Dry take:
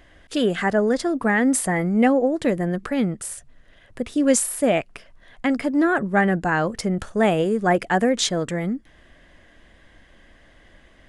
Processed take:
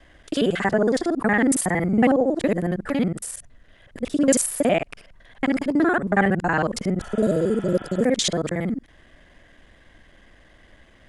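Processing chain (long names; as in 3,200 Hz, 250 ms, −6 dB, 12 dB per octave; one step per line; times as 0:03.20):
reversed piece by piece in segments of 46 ms
healed spectral selection 0:07.03–0:08.01, 660–3,700 Hz before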